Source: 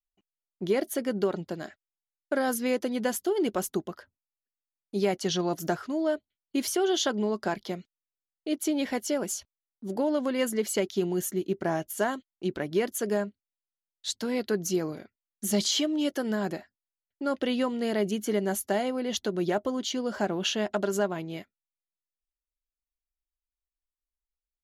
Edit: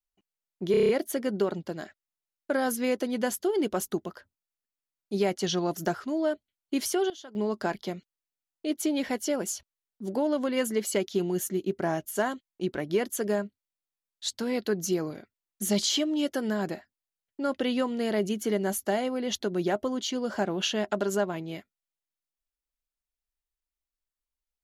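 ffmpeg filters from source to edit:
-filter_complex "[0:a]asplit=9[a][b][c][d][e][f][g][h][i];[a]atrim=end=0.742[j];[b]atrim=start=0.708:end=0.742[k];[c]atrim=start=0.708:end=0.742[l];[d]atrim=start=0.708:end=0.742[m];[e]atrim=start=0.708:end=0.742[n];[f]atrim=start=0.708:end=0.742[o];[g]atrim=start=0.708:end=6.92,asetpts=PTS-STARTPTS,afade=t=out:st=5.962:d=0.25:c=log:silence=0.11885[p];[h]atrim=start=6.92:end=7.17,asetpts=PTS-STARTPTS,volume=-18.5dB[q];[i]atrim=start=7.17,asetpts=PTS-STARTPTS,afade=t=in:d=0.25:c=log:silence=0.11885[r];[j][k]acrossfade=d=0.004:c1=hsin:c2=hsin[s];[s][l]acrossfade=d=0.004:c1=hsin:c2=hsin[t];[t][m]acrossfade=d=0.004:c1=hsin:c2=hsin[u];[u][n]acrossfade=d=0.004:c1=hsin:c2=hsin[v];[v][o]acrossfade=d=0.004:c1=hsin:c2=hsin[w];[p][q][r]concat=n=3:v=0:a=1[x];[w][x]acrossfade=d=0.004:c1=hsin:c2=hsin"

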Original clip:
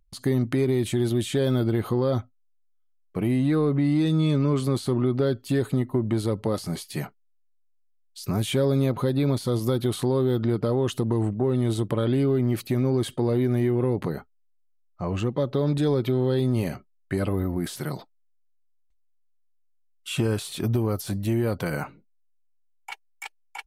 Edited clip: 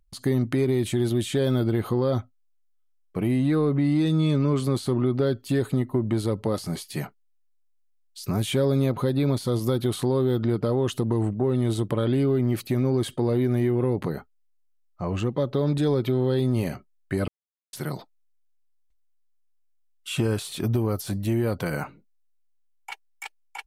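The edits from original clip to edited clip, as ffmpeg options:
-filter_complex "[0:a]asplit=3[a][b][c];[a]atrim=end=17.28,asetpts=PTS-STARTPTS,afade=t=out:st=17.276:d=0.004:c=hsin[d];[b]atrim=start=17.28:end=17.73,asetpts=PTS-STARTPTS,volume=0[e];[c]atrim=start=17.73,asetpts=PTS-STARTPTS,afade=t=in:d=0.004:c=hsin[f];[d][e][f]concat=n=3:v=0:a=1"

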